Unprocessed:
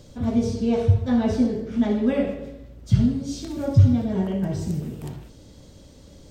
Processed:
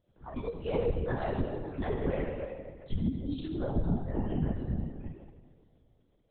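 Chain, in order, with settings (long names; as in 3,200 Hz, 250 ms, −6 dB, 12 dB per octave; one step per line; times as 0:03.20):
noise reduction from a noise print of the clip's start 23 dB
treble cut that deepens with the level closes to 740 Hz, closed at −15 dBFS
low-shelf EQ 360 Hz −7 dB
downward compressor 2 to 1, threshold −31 dBFS, peak gain reduction 8.5 dB
high-frequency loss of the air 170 metres
on a send: tape delay 275 ms, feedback 66%, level −21.5 dB, low-pass 1,900 Hz
on the sum: dense smooth reverb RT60 1.7 s, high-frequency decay 0.95×, DRR 2 dB
linear-prediction vocoder at 8 kHz whisper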